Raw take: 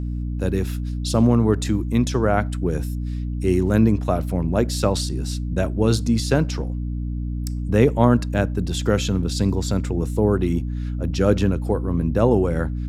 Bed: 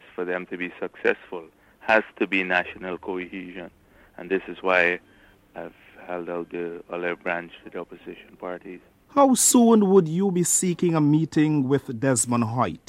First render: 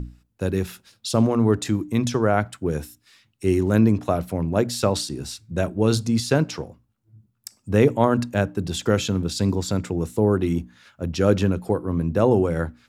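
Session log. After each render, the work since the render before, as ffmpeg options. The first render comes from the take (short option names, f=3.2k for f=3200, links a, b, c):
-af "bandreject=f=60:t=h:w=6,bandreject=f=120:t=h:w=6,bandreject=f=180:t=h:w=6,bandreject=f=240:t=h:w=6,bandreject=f=300:t=h:w=6"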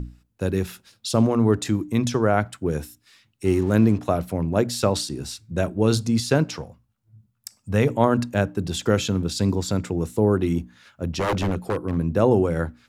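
-filter_complex "[0:a]asettb=1/sr,asplit=3[a][b][c];[a]atrim=end=3.454[d];[b]atrim=start=3.45:end=3.98,asetpts=PTS-STARTPTS,afade=t=in:d=0.004:c=qsin,afade=t=out:st=0.526:d=0.004:c=qsin,aeval=exprs='sgn(val(0))*max(abs(val(0))-0.00841,0)':c=same[e];[c]atrim=start=3.976[f];[d][e]acrossfade=d=0.004:c1=hsin:c2=qsin[g];[g][f]acrossfade=d=0.004:c1=qsin:c2=hsin,asettb=1/sr,asplit=3[h][i][j];[h]atrim=end=6.584[k];[i]atrim=start=6.58:end=7.89,asetpts=PTS-STARTPTS,afade=t=in:d=0.004:c=qsin,afade=t=out:st=1.306:d=0.004:c=qsin,equalizer=f=340:t=o:w=0.77:g=-9[l];[j]atrim=start=7.886[m];[k][l]acrossfade=d=0.004:c1=hsin:c2=qsin[n];[n][m]acrossfade=d=0.004:c1=qsin:c2=hsin,asettb=1/sr,asplit=3[o][p][q];[o]atrim=end=11.064[r];[p]atrim=start=11.06:end=11.98,asetpts=PTS-STARTPTS,afade=t=in:d=0.004:c=qsin,afade=t=out:st=0.916:d=0.004:c=qsin,aeval=exprs='0.15*(abs(mod(val(0)/0.15+3,4)-2)-1)':c=same[s];[q]atrim=start=11.976[t];[r][s]acrossfade=d=0.004:c1=hsin:c2=qsin[u];[u][t]acrossfade=d=0.004:c1=qsin:c2=hsin"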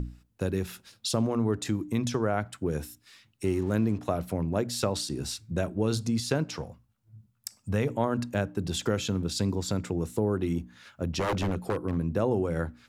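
-af "acompressor=threshold=-29dB:ratio=2"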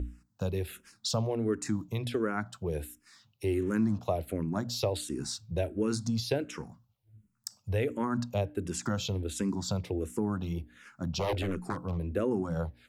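-filter_complex "[0:a]asplit=2[a][b];[b]afreqshift=-1.4[c];[a][c]amix=inputs=2:normalize=1"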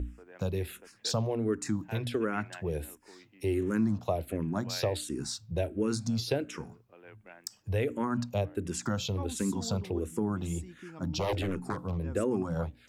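-filter_complex "[1:a]volume=-25.5dB[a];[0:a][a]amix=inputs=2:normalize=0"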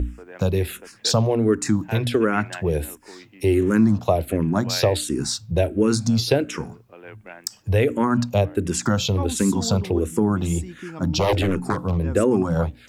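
-af "volume=11dB"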